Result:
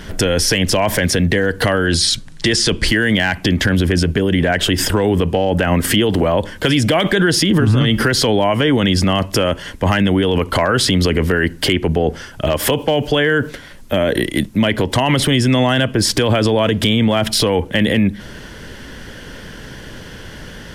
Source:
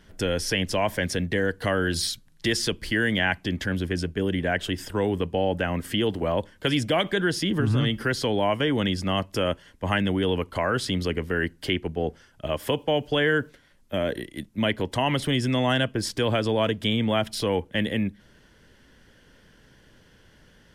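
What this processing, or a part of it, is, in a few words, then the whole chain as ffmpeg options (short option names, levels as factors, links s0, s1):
loud club master: -filter_complex "[0:a]asettb=1/sr,asplit=3[s0][s1][s2];[s0]atrim=end=1.864[s3];[s1]atrim=start=1.86:end=2.88,asetpts=PTS-STARTPTS,afade=t=in:d=0.004:c=qsin,afade=t=out:st=1.016:d=0.004:c=qsin,lowpass=f=9600:w=0.5412,lowpass=f=9600:w=1.3066[s4];[s2]atrim=start=2.876[s5];[s3][s4]acrossfade=d=0.004:c1=hsin:c2=qsin[s6];[s6][s5]acrossfade=d=0.004:c1=qsin:c2=hsin,acompressor=threshold=0.0501:ratio=3,asoftclip=type=hard:threshold=0.112,alimiter=level_in=23.7:limit=0.891:release=50:level=0:latency=1,volume=0.531"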